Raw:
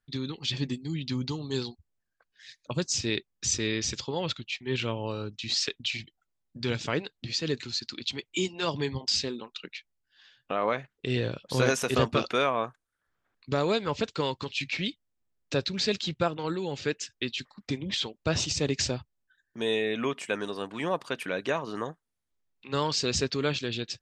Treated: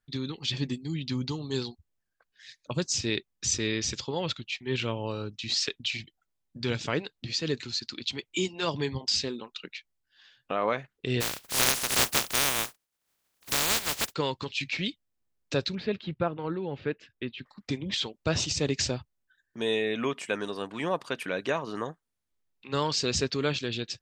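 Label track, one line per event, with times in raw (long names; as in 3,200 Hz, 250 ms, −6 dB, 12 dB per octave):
11.200000	14.120000	compressing power law on the bin magnitudes exponent 0.12
15.750000	17.460000	high-frequency loss of the air 470 metres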